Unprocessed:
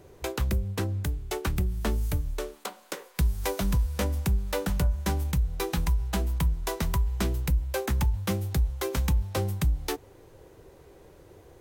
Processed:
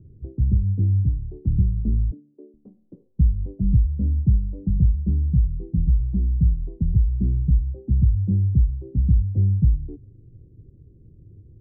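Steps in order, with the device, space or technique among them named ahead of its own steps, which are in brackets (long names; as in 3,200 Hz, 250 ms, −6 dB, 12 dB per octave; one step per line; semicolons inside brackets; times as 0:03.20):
0:02.11–0:02.54: Butterworth high-pass 250 Hz 36 dB per octave
the neighbour's flat through the wall (low-pass filter 250 Hz 24 dB per octave; parametric band 110 Hz +7 dB 0.63 octaves)
level +6 dB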